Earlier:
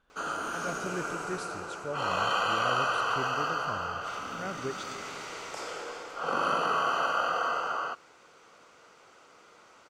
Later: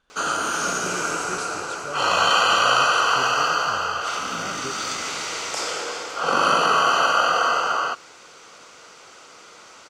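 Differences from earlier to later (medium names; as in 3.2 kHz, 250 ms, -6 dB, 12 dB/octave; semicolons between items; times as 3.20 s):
background +8.0 dB; master: add peaking EQ 6 kHz +8.5 dB 2.3 oct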